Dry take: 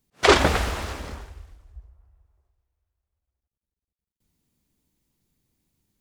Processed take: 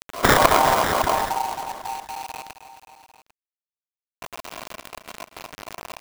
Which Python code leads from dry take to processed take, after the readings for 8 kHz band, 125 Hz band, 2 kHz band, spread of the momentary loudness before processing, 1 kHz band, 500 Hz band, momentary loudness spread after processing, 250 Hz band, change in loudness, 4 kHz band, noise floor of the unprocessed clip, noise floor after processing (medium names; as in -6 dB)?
+6.0 dB, -1.0 dB, +3.0 dB, 19 LU, +8.5 dB, +2.0 dB, 22 LU, +1.0 dB, +0.5 dB, +0.5 dB, under -85 dBFS, under -85 dBFS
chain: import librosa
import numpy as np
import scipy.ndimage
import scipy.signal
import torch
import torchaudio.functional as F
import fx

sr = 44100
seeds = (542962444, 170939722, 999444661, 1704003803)

p1 = fx.spec_dropout(x, sr, seeds[0], share_pct=22)
p2 = scipy.signal.sosfilt(scipy.signal.butter(2, 48.0, 'highpass', fs=sr, output='sos'), p1)
p3 = fx.peak_eq(p2, sr, hz=180.0, db=12.5, octaves=1.3)
p4 = fx.rider(p3, sr, range_db=5, speed_s=0.5)
p5 = p3 + (p4 * 10.0 ** (-1.0 / 20.0))
p6 = fx.sample_hold(p5, sr, seeds[1], rate_hz=1800.0, jitter_pct=0)
p7 = p6 * np.sin(2.0 * np.pi * 850.0 * np.arange(len(p6)) / sr)
p8 = fx.quant_companded(p7, sr, bits=4)
p9 = p8 + fx.echo_feedback(p8, sr, ms=266, feedback_pct=49, wet_db=-22, dry=0)
p10 = fx.env_flatten(p9, sr, amount_pct=50)
y = p10 * 10.0 ** (-1.5 / 20.0)